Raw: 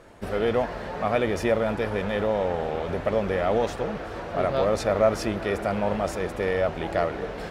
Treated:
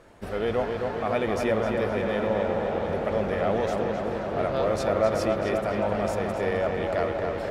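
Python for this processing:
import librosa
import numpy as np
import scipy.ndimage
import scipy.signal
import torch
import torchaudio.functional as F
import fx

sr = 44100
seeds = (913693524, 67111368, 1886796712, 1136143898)

y = fx.echo_filtered(x, sr, ms=261, feedback_pct=76, hz=3500.0, wet_db=-4)
y = y * librosa.db_to_amplitude(-3.0)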